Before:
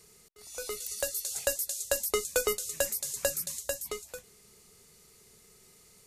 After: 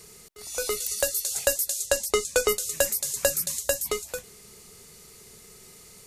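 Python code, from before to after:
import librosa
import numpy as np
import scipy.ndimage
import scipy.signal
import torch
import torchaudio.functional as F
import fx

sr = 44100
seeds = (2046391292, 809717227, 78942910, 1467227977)

p1 = fx.lowpass(x, sr, hz=9500.0, slope=12, at=(1.86, 2.49))
p2 = fx.rider(p1, sr, range_db=10, speed_s=0.5)
y = p1 + F.gain(torch.from_numpy(p2), 1.0).numpy()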